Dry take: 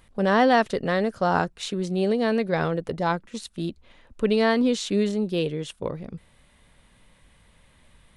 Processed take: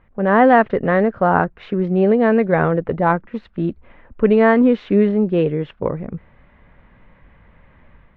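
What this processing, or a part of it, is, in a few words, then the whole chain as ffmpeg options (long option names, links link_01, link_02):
action camera in a waterproof case: -af "lowpass=frequency=2100:width=0.5412,lowpass=frequency=2100:width=1.3066,dynaudnorm=framelen=110:gausssize=5:maxgain=7dB,volume=1.5dB" -ar 32000 -c:a aac -b:a 64k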